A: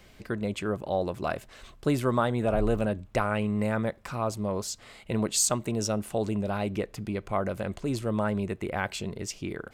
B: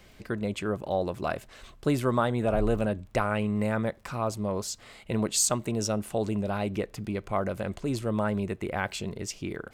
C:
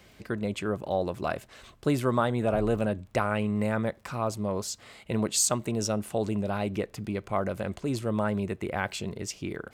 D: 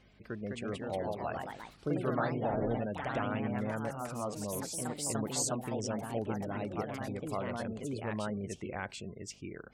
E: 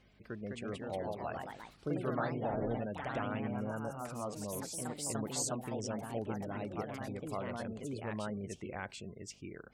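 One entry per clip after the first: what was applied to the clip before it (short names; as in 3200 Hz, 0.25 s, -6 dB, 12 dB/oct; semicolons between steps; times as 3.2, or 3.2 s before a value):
crackle 22/s -47 dBFS
HPF 53 Hz
buzz 50 Hz, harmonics 5, -58 dBFS -1 dB/oct; spectral gate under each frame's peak -25 dB strong; echoes that change speed 0.24 s, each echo +2 st, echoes 3; gain -9 dB
spectral repair 3.56–3.92, 1700–5200 Hz both; gain -3 dB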